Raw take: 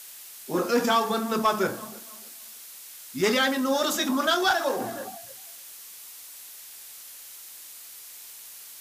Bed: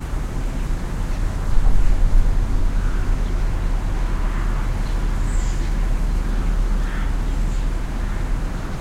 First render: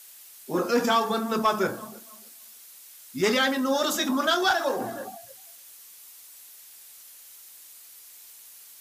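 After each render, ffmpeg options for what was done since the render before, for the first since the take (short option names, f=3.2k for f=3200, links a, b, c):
-af "afftdn=nr=6:nf=-45"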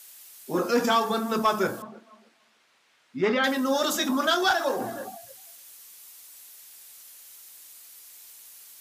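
-filter_complex "[0:a]asettb=1/sr,asplit=3[a][b][c];[a]atrim=end=1.824[d];[b]atrim=start=1.82:end=3.44,asetpts=PTS-STARTPTS,afade=t=in:d=0.004:c=qsin,afade=t=out:st=1.616:d=0.004:c=qsin,highpass=120,lowpass=2.3k[e];[c]atrim=start=3.436[f];[d][e]acrossfade=d=0.004:c1=hsin:c2=qsin[g];[g][f]acrossfade=d=0.004:c1=qsin:c2=hsin"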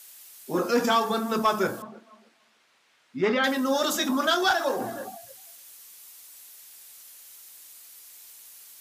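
-af anull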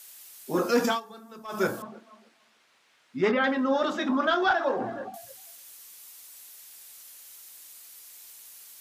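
-filter_complex "[0:a]asettb=1/sr,asplit=3[a][b][c];[a]atrim=end=3.314[d];[b]atrim=start=3.31:end=5.14,asetpts=PTS-STARTPTS,afade=t=in:d=0.004:c=qsin,afade=t=out:st=1.826:d=0.004:c=qsin,lowpass=2.4k[e];[c]atrim=start=5.136[f];[d][e]acrossfade=d=0.004:c1=hsin:c2=qsin[g];[g][f]acrossfade=d=0.004:c1=qsin:c2=hsin,asplit=3[h][i][j];[h]atrim=end=1.01,asetpts=PTS-STARTPTS,afade=t=out:st=0.86:d=0.15:silence=0.105925[k];[i]atrim=start=1.01:end=1.48,asetpts=PTS-STARTPTS,volume=-19.5dB[l];[j]atrim=start=1.48,asetpts=PTS-STARTPTS,afade=t=in:d=0.15:silence=0.105925[m];[k][l][m]concat=n=3:v=0:a=1"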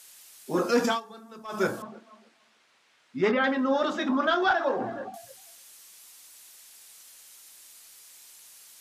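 -af "lowpass=11k"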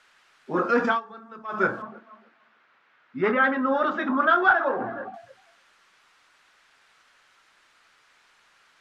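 -af "lowpass=2.5k,equalizer=f=1.4k:t=o:w=0.85:g=8.5"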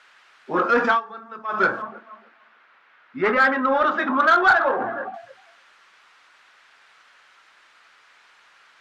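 -filter_complex "[0:a]asplit=2[a][b];[b]highpass=f=720:p=1,volume=10dB,asoftclip=type=tanh:threshold=-7dB[c];[a][c]amix=inputs=2:normalize=0,lowpass=f=3.4k:p=1,volume=-6dB,asplit=2[d][e];[e]asoftclip=type=tanh:threshold=-18.5dB,volume=-12dB[f];[d][f]amix=inputs=2:normalize=0"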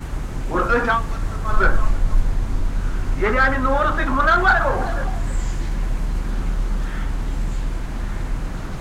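-filter_complex "[1:a]volume=-2dB[a];[0:a][a]amix=inputs=2:normalize=0"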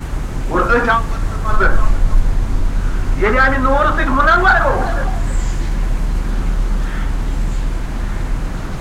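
-af "volume=5dB,alimiter=limit=-2dB:level=0:latency=1"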